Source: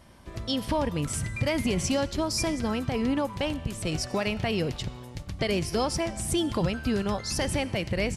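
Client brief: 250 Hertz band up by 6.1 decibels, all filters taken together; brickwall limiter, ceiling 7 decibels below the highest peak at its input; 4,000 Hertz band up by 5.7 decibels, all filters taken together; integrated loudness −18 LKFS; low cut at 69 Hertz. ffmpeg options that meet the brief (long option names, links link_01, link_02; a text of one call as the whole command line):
ffmpeg -i in.wav -af "highpass=69,equalizer=frequency=250:width_type=o:gain=7.5,equalizer=frequency=4000:width_type=o:gain=8,volume=8.5dB,alimiter=limit=-8dB:level=0:latency=1" out.wav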